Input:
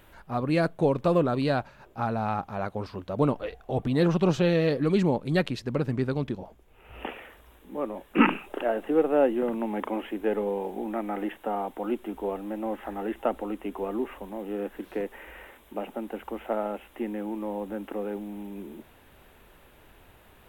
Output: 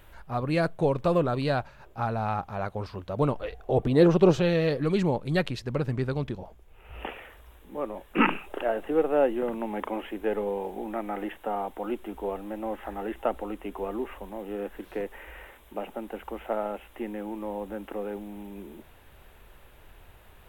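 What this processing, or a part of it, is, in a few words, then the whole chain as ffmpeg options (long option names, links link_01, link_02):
low shelf boost with a cut just above: -filter_complex "[0:a]lowshelf=frequency=73:gain=8,equalizer=frequency=250:width_type=o:width=1:gain=-5,asettb=1/sr,asplit=3[link_01][link_02][link_03];[link_01]atrim=end=3.584[link_04];[link_02]atrim=start=3.58:end=4.4,asetpts=PTS-STARTPTS,afade=type=in:duration=0.004:curve=qsin,afade=type=out:start_time=0.816:duration=0.004:curve=qsin,equalizer=frequency=400:width_type=o:width=1.4:gain=8.5[link_05];[link_03]atrim=start=4.396[link_06];[link_04][link_05]acrossfade=duration=0.004:curve1=hsin:curve2=qsin[link_07];[link_07][link_06]acrossfade=duration=0.004:curve1=qsin:curve2=hsin"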